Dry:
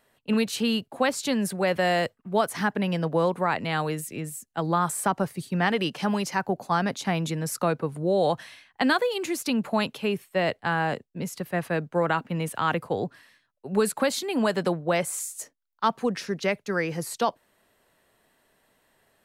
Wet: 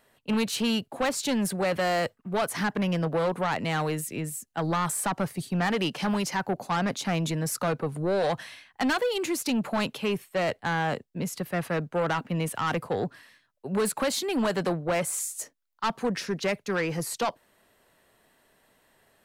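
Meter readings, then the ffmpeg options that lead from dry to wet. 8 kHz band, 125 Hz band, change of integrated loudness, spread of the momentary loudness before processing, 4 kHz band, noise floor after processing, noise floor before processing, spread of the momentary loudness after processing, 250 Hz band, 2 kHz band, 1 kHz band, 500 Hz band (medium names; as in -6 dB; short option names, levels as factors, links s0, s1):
+1.0 dB, -0.5 dB, -1.5 dB, 7 LU, -0.5 dB, -69 dBFS, -71 dBFS, 5 LU, -1.5 dB, -2.0 dB, -2.5 dB, -2.0 dB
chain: -af "asoftclip=type=tanh:threshold=0.0708,volume=1.26"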